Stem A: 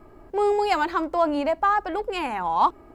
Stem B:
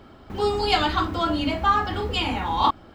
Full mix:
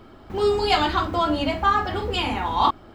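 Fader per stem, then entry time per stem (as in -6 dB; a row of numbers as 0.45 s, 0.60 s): -3.0 dB, -0.5 dB; 0.00 s, 0.00 s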